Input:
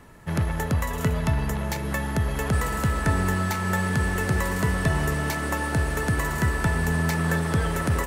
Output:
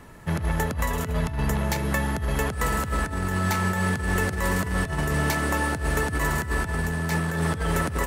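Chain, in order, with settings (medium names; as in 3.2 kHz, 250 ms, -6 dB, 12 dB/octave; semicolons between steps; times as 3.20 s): compressor with a negative ratio -25 dBFS, ratio -0.5; trim +1 dB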